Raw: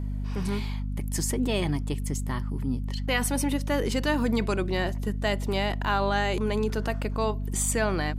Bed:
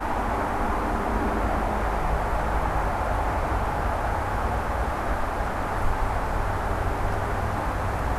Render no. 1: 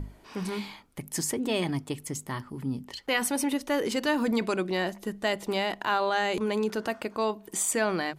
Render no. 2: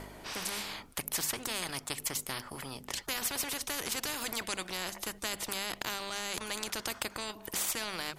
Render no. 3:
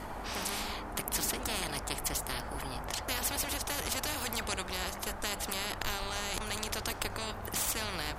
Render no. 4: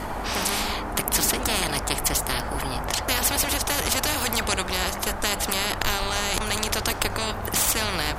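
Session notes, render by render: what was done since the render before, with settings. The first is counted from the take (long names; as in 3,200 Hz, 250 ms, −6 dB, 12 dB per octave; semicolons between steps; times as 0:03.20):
mains-hum notches 50/100/150/200/250 Hz
transient designer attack +2 dB, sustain −5 dB; every bin compressed towards the loudest bin 4 to 1
mix in bed −16 dB
level +10.5 dB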